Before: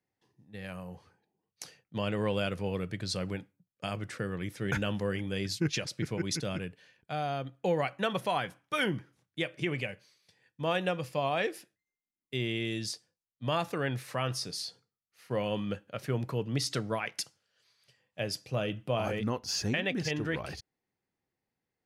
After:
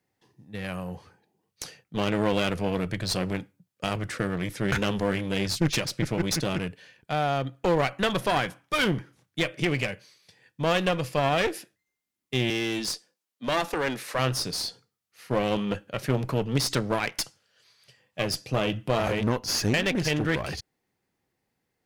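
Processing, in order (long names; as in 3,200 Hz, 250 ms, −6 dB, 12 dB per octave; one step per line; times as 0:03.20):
0:12.50–0:14.19: high-pass filter 210 Hz 24 dB per octave
asymmetric clip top −38.5 dBFS
level +8.5 dB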